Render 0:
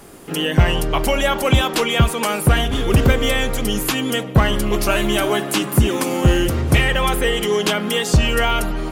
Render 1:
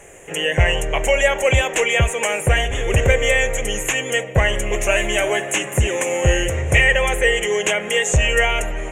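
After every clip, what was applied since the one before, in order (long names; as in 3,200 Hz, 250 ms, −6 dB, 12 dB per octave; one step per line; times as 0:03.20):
drawn EQ curve 100 Hz 0 dB, 260 Hz −13 dB, 520 Hz +6 dB, 1,300 Hz −7 dB, 1,900 Hz +9 dB, 2,800 Hz +4 dB, 4,700 Hz −22 dB, 6,700 Hz +11 dB, 13,000 Hz −11 dB
level −1.5 dB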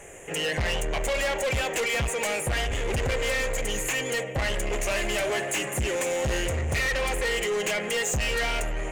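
in parallel at −0.5 dB: brickwall limiter −9 dBFS, peak gain reduction 7 dB
on the sum: soft clipping −16 dBFS, distortion −7 dB
level −7.5 dB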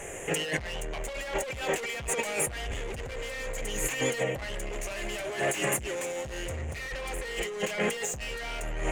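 compressor whose output falls as the input rises −31 dBFS, ratio −0.5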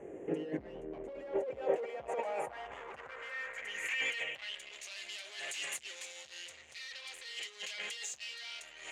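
band-pass filter sweep 310 Hz → 4,100 Hz, 0:00.97–0:04.87
level +2 dB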